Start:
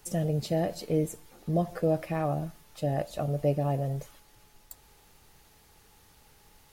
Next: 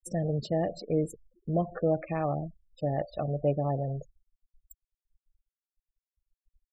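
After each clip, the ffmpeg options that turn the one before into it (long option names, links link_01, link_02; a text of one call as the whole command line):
ffmpeg -i in.wav -af "bass=frequency=250:gain=-2,treble=frequency=4000:gain=-3,afftfilt=real='re*gte(hypot(re,im),0.0126)':imag='im*gte(hypot(re,im),0.0126)':win_size=1024:overlap=0.75" out.wav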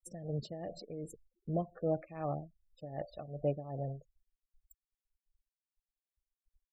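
ffmpeg -i in.wav -af "tremolo=f=2.6:d=0.76,volume=-5.5dB" out.wav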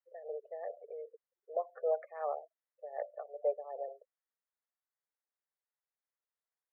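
ffmpeg -i in.wav -af "asuperpass=centerf=960:order=20:qfactor=0.57,volume=2.5dB" out.wav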